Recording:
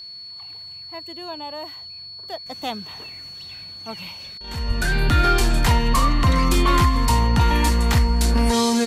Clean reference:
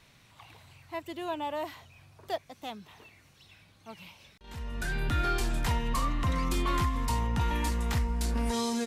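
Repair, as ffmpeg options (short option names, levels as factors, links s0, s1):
-filter_complex "[0:a]bandreject=f=4400:w=30,asplit=3[s0][s1][s2];[s0]afade=t=out:st=4.67:d=0.02[s3];[s1]highpass=f=140:w=0.5412,highpass=f=140:w=1.3066,afade=t=in:st=4.67:d=0.02,afade=t=out:st=4.79:d=0.02[s4];[s2]afade=t=in:st=4.79:d=0.02[s5];[s3][s4][s5]amix=inputs=3:normalize=0,asetnsamples=n=441:p=0,asendcmd='2.46 volume volume -11.5dB',volume=1"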